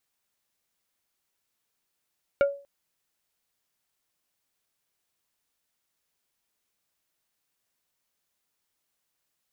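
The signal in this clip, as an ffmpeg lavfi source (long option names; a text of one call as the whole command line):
ffmpeg -f lavfi -i "aevalsrc='0.178*pow(10,-3*t/0.37)*sin(2*PI*562*t)+0.075*pow(10,-3*t/0.123)*sin(2*PI*1405*t)+0.0316*pow(10,-3*t/0.07)*sin(2*PI*2248*t)+0.0133*pow(10,-3*t/0.054)*sin(2*PI*2810*t)+0.00562*pow(10,-3*t/0.039)*sin(2*PI*3653*t)':duration=0.24:sample_rate=44100" out.wav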